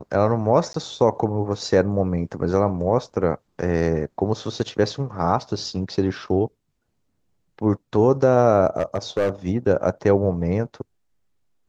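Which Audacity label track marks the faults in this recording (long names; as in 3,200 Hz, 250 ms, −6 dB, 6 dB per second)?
0.730000	0.740000	drop-out 13 ms
8.780000	9.300000	clipping −15.5 dBFS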